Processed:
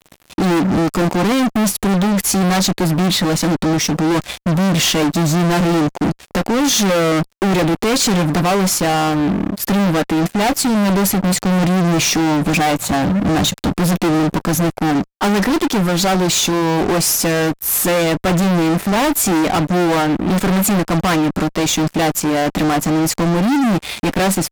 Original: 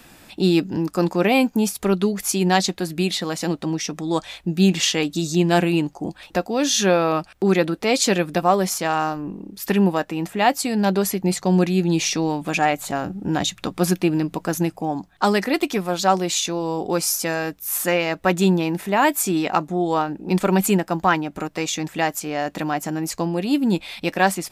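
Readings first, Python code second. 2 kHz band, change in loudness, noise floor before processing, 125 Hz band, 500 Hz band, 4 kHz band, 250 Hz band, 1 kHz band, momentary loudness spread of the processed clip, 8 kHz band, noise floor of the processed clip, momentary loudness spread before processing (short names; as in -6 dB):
+4.0 dB, +5.5 dB, -51 dBFS, +7.5 dB, +3.0 dB, +6.0 dB, +6.0 dB, +3.5 dB, 3 LU, +6.5 dB, -53 dBFS, 7 LU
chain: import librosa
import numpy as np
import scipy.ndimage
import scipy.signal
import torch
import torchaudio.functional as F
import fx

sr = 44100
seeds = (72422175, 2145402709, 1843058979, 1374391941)

y = scipy.signal.sosfilt(scipy.signal.butter(4, 53.0, 'highpass', fs=sr, output='sos'), x)
y = fx.low_shelf(y, sr, hz=430.0, db=10.5)
y = fx.fuzz(y, sr, gain_db=27.0, gate_db=-36.0)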